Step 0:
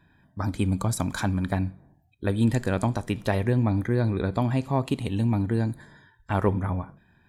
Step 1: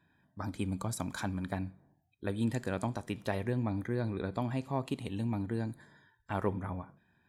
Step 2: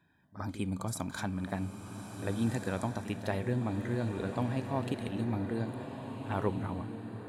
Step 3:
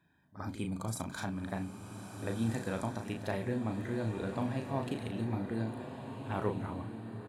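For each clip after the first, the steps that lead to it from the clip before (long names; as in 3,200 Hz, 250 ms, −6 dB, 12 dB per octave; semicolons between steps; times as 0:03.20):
high-pass filter 120 Hz 6 dB per octave; level −8 dB
backwards echo 48 ms −13.5 dB; slow-attack reverb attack 1,580 ms, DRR 6 dB
double-tracking delay 36 ms −6 dB; level −2.5 dB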